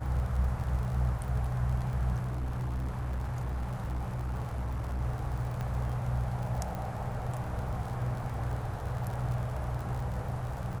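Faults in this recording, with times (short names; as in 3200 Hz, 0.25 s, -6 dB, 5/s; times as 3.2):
crackle 53/s -37 dBFS
2.21–5.02 clipped -30 dBFS
5.61 pop -23 dBFS
6.75 pop -25 dBFS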